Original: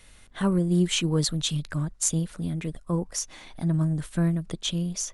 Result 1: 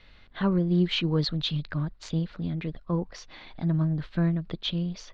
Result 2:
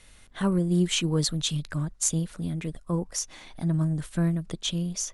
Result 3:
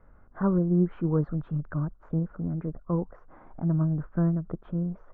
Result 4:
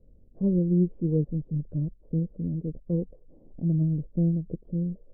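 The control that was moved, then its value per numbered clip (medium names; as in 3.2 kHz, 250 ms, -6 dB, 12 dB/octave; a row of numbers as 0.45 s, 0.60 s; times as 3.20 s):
Chebyshev low-pass, frequency: 4.4 kHz, 12 kHz, 1.4 kHz, 520 Hz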